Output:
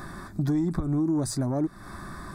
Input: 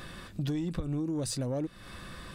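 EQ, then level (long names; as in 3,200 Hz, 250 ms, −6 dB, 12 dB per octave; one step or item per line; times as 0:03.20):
parametric band 470 Hz +15 dB 1.6 octaves
phaser with its sweep stopped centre 1,200 Hz, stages 4
+4.0 dB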